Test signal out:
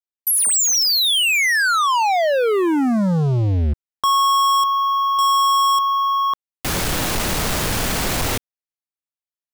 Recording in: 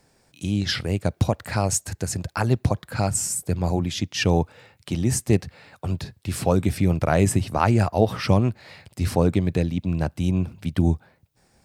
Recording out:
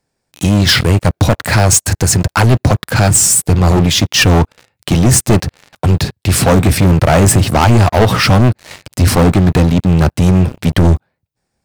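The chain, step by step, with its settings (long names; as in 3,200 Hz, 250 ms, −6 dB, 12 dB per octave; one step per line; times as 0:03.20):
leveller curve on the samples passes 5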